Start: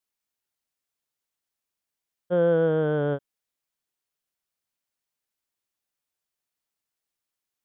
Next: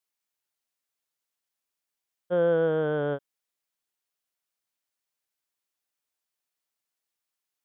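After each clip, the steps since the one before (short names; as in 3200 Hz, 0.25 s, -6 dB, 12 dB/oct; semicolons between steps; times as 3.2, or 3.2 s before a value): low shelf 280 Hz -7.5 dB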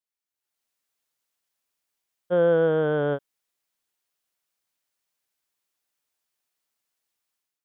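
AGC gain up to 12.5 dB; gain -8 dB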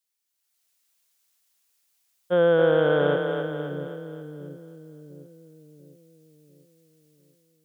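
high shelf 2300 Hz +11 dB; split-band echo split 350 Hz, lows 0.696 s, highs 0.267 s, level -5 dB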